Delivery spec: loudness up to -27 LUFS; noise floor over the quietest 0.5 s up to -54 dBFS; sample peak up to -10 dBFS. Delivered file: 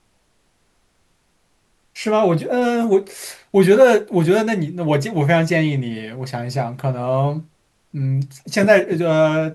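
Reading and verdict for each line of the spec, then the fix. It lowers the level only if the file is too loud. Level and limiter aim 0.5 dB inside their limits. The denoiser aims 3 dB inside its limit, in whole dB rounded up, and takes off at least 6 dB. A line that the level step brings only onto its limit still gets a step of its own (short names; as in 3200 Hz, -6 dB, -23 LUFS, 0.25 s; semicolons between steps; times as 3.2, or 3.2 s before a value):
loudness -18.0 LUFS: fail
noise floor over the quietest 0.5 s -63 dBFS: OK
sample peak -1.5 dBFS: fail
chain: gain -9.5 dB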